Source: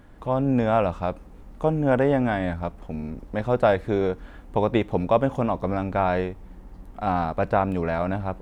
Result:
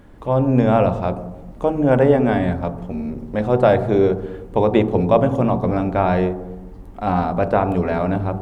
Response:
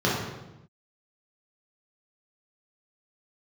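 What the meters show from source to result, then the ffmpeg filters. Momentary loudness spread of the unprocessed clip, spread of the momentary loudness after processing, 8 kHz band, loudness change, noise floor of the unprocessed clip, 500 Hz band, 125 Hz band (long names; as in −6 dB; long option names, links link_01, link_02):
11 LU, 11 LU, can't be measured, +5.5 dB, −45 dBFS, +6.0 dB, +7.0 dB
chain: -filter_complex "[0:a]asplit=2[link_01][link_02];[link_02]lowpass=1000[link_03];[1:a]atrim=start_sample=2205,lowshelf=frequency=64:gain=-11[link_04];[link_03][link_04]afir=irnorm=-1:irlink=0,volume=-21dB[link_05];[link_01][link_05]amix=inputs=2:normalize=0,volume=3dB"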